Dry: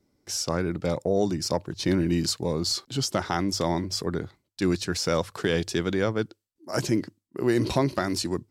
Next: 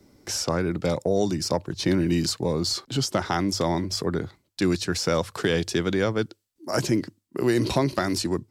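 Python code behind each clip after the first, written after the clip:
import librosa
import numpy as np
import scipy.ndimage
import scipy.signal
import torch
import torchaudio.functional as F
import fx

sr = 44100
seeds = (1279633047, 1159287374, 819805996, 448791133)

y = fx.band_squash(x, sr, depth_pct=40)
y = y * 10.0 ** (1.5 / 20.0)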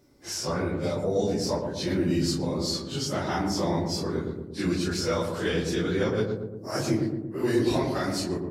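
y = fx.phase_scramble(x, sr, seeds[0], window_ms=100)
y = fx.echo_filtered(y, sr, ms=115, feedback_pct=65, hz=820.0, wet_db=-3)
y = y * 10.0 ** (-4.0 / 20.0)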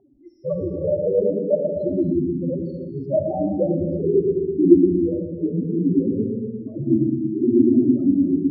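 y = fx.spec_topn(x, sr, count=4)
y = fx.filter_sweep_lowpass(y, sr, from_hz=720.0, to_hz=260.0, start_s=2.63, end_s=5.58, q=5.5)
y = fx.rev_gated(y, sr, seeds[1], gate_ms=360, shape='flat', drr_db=5.0)
y = y * 10.0 ** (4.5 / 20.0)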